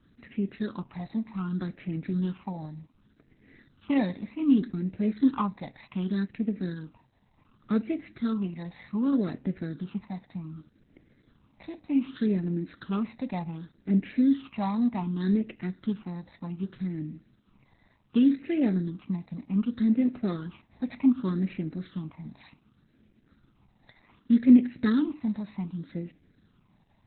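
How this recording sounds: a buzz of ramps at a fixed pitch in blocks of 8 samples; phasing stages 8, 0.66 Hz, lowest notch 390–1100 Hz; a quantiser's noise floor 12-bit, dither triangular; Opus

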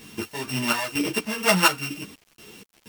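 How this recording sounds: a buzz of ramps at a fixed pitch in blocks of 16 samples; chopped level 2.1 Hz, depth 65%, duty 50%; a quantiser's noise floor 8-bit, dither none; a shimmering, thickened sound

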